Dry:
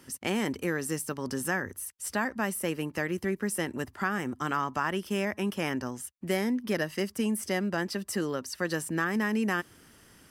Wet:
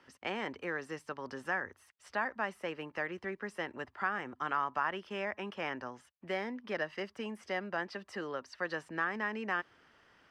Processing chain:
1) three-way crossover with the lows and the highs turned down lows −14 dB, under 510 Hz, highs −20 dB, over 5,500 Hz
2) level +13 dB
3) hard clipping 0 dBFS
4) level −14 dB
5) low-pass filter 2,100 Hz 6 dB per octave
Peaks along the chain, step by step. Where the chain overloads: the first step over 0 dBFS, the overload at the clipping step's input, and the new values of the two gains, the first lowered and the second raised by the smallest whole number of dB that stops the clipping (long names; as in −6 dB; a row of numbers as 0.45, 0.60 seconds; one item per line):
−16.5, −3.5, −3.5, −17.5, −19.0 dBFS
no step passes full scale